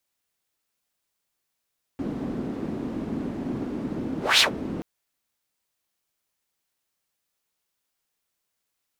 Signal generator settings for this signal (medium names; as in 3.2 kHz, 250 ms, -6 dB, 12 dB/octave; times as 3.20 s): whoosh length 2.83 s, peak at 2.41 s, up 0.21 s, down 0.12 s, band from 260 Hz, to 4 kHz, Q 2.6, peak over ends 14 dB